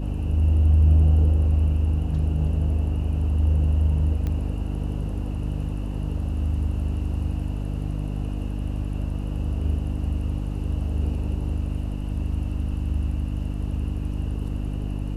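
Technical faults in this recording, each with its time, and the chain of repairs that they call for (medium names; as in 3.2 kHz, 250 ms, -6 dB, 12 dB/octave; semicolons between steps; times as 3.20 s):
hum 50 Hz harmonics 6 -28 dBFS
4.27 s: pop -18 dBFS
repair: de-click; de-hum 50 Hz, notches 6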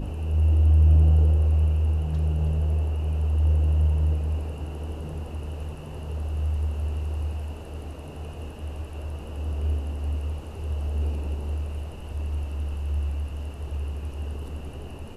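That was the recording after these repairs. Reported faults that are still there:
4.27 s: pop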